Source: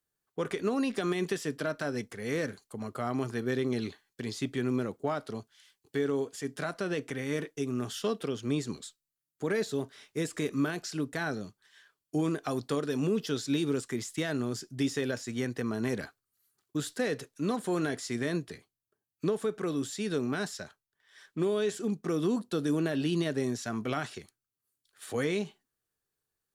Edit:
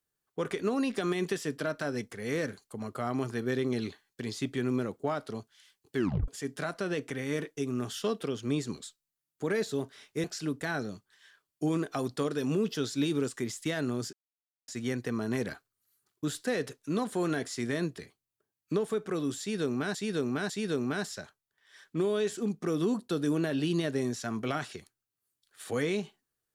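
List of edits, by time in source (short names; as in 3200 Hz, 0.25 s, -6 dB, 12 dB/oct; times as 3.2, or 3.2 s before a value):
5.96 tape stop 0.32 s
10.24–10.76 cut
14.65–15.2 mute
19.92–20.47 loop, 3 plays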